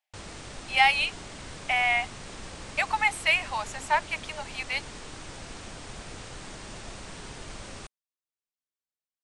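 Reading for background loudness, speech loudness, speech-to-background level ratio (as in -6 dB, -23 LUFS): -42.0 LUFS, -26.0 LUFS, 16.0 dB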